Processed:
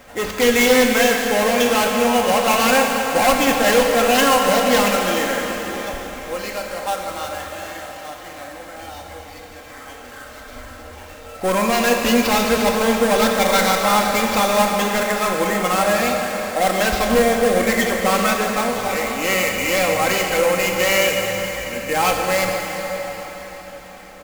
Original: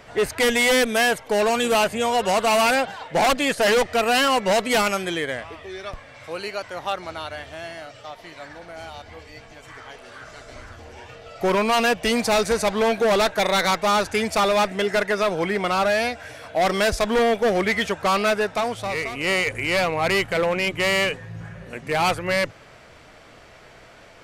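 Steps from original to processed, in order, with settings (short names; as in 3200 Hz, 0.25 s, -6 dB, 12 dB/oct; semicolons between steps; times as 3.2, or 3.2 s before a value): comb 3.8 ms, depth 60%; sample-rate reducer 9400 Hz, jitter 20%; plate-style reverb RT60 4.9 s, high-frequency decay 0.85×, DRR 0.5 dB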